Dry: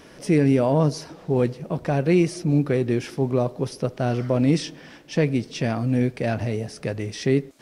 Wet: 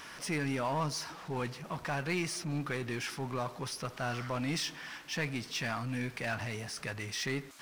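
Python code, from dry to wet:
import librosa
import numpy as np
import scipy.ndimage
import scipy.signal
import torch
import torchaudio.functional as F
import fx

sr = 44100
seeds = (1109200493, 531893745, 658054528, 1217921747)

y = fx.low_shelf_res(x, sr, hz=740.0, db=-11.5, q=1.5)
y = fx.power_curve(y, sr, exponent=0.7)
y = y * 10.0 ** (-7.5 / 20.0)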